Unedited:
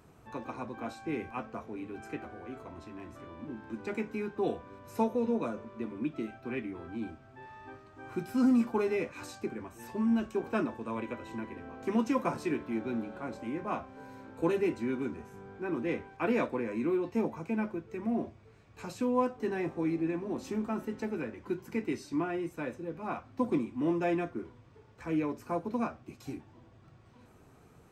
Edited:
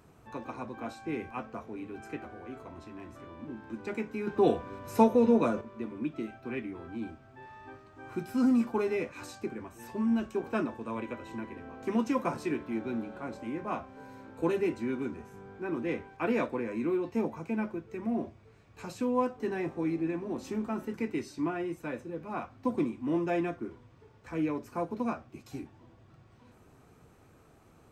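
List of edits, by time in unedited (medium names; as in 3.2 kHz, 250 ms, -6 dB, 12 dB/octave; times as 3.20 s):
4.27–5.61 s: gain +7 dB
20.94–21.68 s: delete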